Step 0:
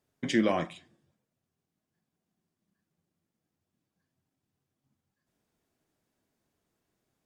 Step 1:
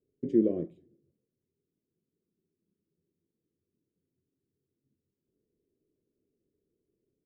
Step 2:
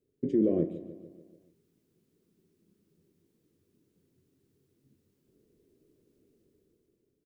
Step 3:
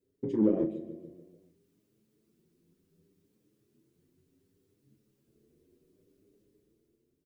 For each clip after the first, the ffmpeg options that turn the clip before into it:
-af "firequalizer=gain_entry='entry(210,0);entry(410,10);entry(820,-29)':delay=0.05:min_phase=1,volume=-2.5dB"
-af "alimiter=limit=-21dB:level=0:latency=1:release=16,dynaudnorm=f=180:g=9:m=10dB,aecho=1:1:146|292|438|584|730|876:0.168|0.099|0.0584|0.0345|0.0203|0.012,volume=2.5dB"
-filter_complex "[0:a]asplit=2[a][b];[b]asoftclip=type=tanh:threshold=-24.5dB,volume=-7.5dB[c];[a][c]amix=inputs=2:normalize=0,asplit=2[d][e];[e]adelay=37,volume=-11.5dB[f];[d][f]amix=inputs=2:normalize=0,asplit=2[g][h];[h]adelay=7.9,afreqshift=0.66[i];[g][i]amix=inputs=2:normalize=1"

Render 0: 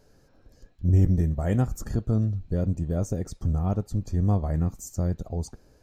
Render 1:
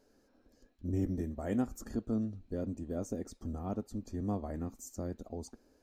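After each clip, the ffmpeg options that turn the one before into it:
-af "lowshelf=f=190:t=q:w=3:g=-7,volume=-8dB"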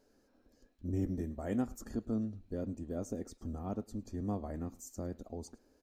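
-af "aecho=1:1:106:0.0668,volume=-1.5dB"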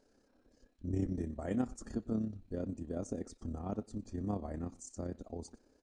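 -af "tremolo=f=33:d=0.519,aresample=22050,aresample=44100,volume=2dB"

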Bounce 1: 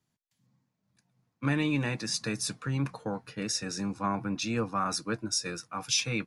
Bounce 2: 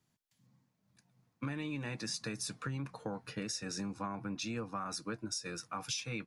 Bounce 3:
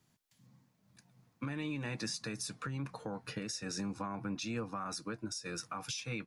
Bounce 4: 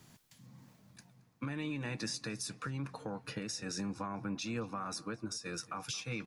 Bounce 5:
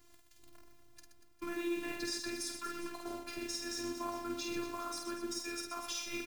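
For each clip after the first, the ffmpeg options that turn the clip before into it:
-af "acompressor=threshold=-38dB:ratio=6,volume=1.5dB"
-af "alimiter=level_in=10dB:limit=-24dB:level=0:latency=1:release=452,volume=-10dB,volume=5.5dB"
-filter_complex "[0:a]areverse,acompressor=mode=upward:threshold=-47dB:ratio=2.5,areverse,asplit=2[a][b];[b]adelay=223,lowpass=f=3.4k:p=1,volume=-20dB,asplit=2[c][d];[d]adelay=223,lowpass=f=3.4k:p=1,volume=0.48,asplit=2[e][f];[f]adelay=223,lowpass=f=3.4k:p=1,volume=0.48,asplit=2[g][h];[h]adelay=223,lowpass=f=3.4k:p=1,volume=0.48[i];[a][c][e][g][i]amix=inputs=5:normalize=0"
-af "acrusher=bits=9:dc=4:mix=0:aa=0.000001,aecho=1:1:50|125|237.5|406.2|659.4:0.631|0.398|0.251|0.158|0.1,afftfilt=real='hypot(re,im)*cos(PI*b)':imag='0':win_size=512:overlap=0.75,volume=2dB"

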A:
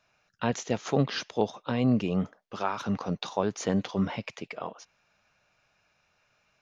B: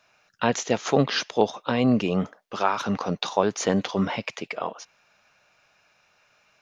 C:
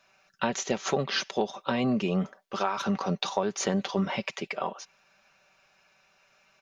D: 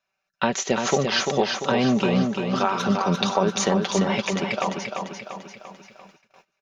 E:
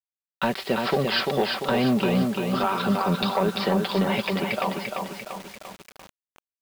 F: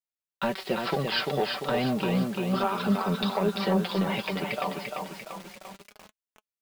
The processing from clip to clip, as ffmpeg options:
-af "lowshelf=f=190:g=-10,volume=7.5dB"
-af "aecho=1:1:5.2:0.53,acompressor=threshold=-21dB:ratio=6,volume=-2dB"
-af "aecho=1:1:344|688|1032|1376|1720|2064:0.562|0.287|0.146|0.0746|0.038|0.0194,agate=range=-21dB:threshold=-56dB:ratio=16:detection=peak,volume=5.5dB"
-af "aresample=11025,asoftclip=type=tanh:threshold=-13dB,aresample=44100,acrusher=bits=6:mix=0:aa=0.000001"
-af "flanger=delay=4.6:depth=2.2:regen=48:speed=0.32:shape=sinusoidal"

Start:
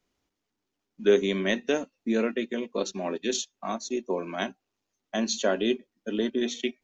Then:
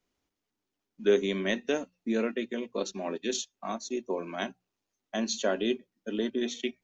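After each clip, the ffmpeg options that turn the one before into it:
-af "bandreject=f=60:t=h:w=6,bandreject=f=120:t=h:w=6,bandreject=f=180:t=h:w=6,volume=-3dB"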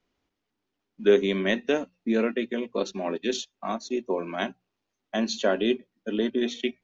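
-af "lowpass=4.5k,volume=4.5dB"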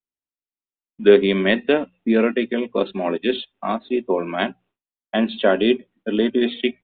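-af "aresample=8000,aresample=44100,agate=range=-33dB:threshold=-55dB:ratio=3:detection=peak,volume=7dB"

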